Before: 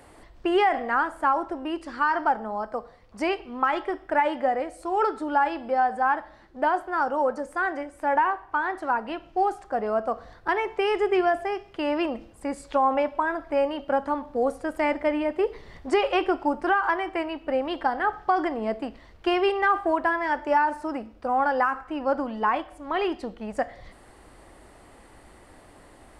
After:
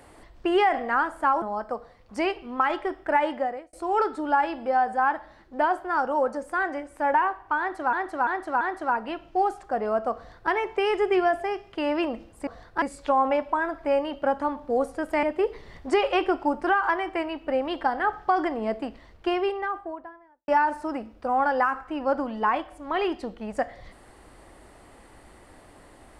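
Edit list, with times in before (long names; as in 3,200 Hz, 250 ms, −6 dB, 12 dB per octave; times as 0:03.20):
0:01.42–0:02.45: remove
0:04.33–0:04.76: fade out
0:08.62–0:08.96: repeat, 4 plays
0:10.17–0:10.52: duplicate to 0:12.48
0:14.89–0:15.23: remove
0:18.87–0:20.48: fade out and dull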